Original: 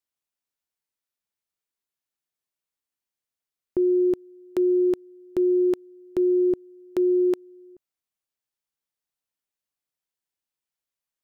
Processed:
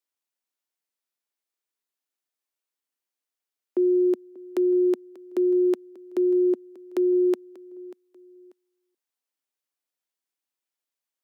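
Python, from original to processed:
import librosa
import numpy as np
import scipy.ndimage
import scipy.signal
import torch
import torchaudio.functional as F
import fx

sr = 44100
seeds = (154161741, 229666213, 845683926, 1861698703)

y = scipy.signal.sosfilt(scipy.signal.butter(8, 230.0, 'highpass', fs=sr, output='sos'), x)
y = fx.echo_feedback(y, sr, ms=589, feedback_pct=30, wet_db=-19.5)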